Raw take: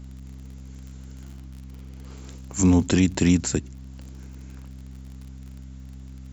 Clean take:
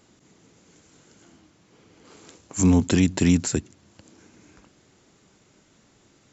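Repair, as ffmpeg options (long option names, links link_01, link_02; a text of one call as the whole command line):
ffmpeg -i in.wav -af "adeclick=threshold=4,bandreject=frequency=65.6:width_type=h:width=4,bandreject=frequency=131.2:width_type=h:width=4,bandreject=frequency=196.8:width_type=h:width=4,bandreject=frequency=262.4:width_type=h:width=4" out.wav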